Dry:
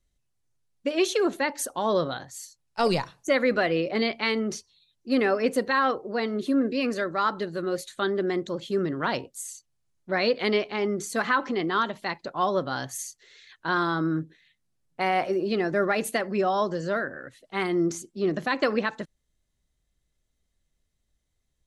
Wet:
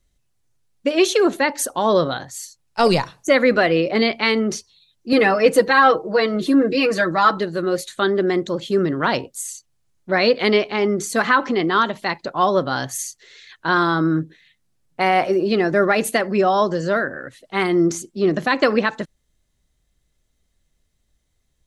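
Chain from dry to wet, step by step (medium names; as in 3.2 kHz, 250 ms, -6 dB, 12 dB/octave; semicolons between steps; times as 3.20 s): 5.12–7.38 s: comb 6.2 ms, depth 89%; trim +7.5 dB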